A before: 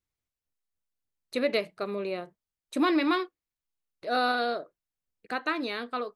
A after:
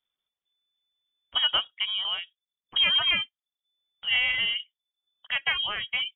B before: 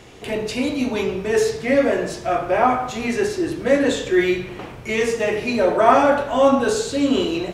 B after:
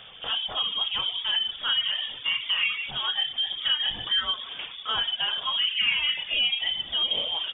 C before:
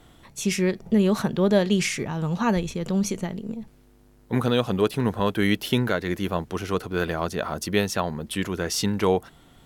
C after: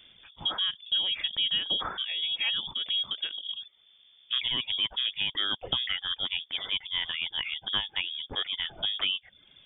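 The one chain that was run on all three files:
compression 2.5:1, threshold -23 dBFS; reverb removal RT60 0.53 s; frequency inversion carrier 3.5 kHz; peak normalisation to -12 dBFS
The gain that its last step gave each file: +4.0 dB, -1.5 dB, -3.0 dB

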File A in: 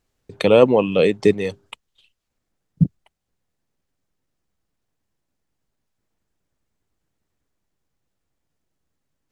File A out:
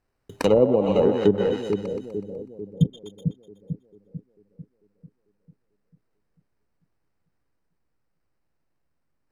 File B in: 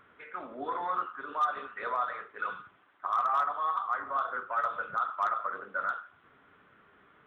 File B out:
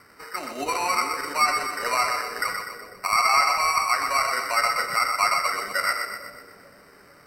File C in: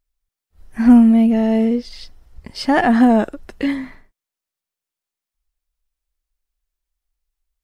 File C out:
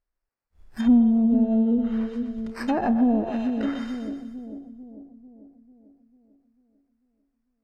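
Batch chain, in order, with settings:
sample-and-hold 13×; two-band feedback delay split 500 Hz, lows 445 ms, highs 124 ms, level -6 dB; low-pass that closes with the level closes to 560 Hz, closed at -9 dBFS; normalise loudness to -23 LUFS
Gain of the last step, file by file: -3.0 dB, +7.5 dB, -7.5 dB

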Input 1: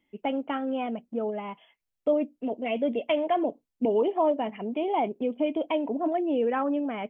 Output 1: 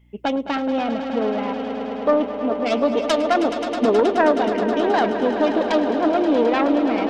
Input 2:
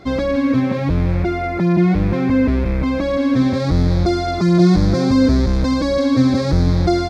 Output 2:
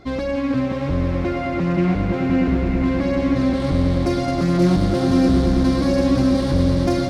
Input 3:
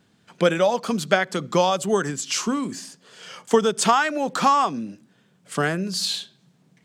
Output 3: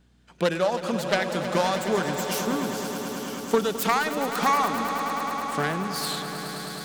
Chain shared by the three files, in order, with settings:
self-modulated delay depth 0.24 ms; echo with a slow build-up 106 ms, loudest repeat 5, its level -12 dB; hum 60 Hz, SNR 35 dB; peak normalisation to -6 dBFS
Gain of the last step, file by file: +7.0 dB, -4.5 dB, -4.5 dB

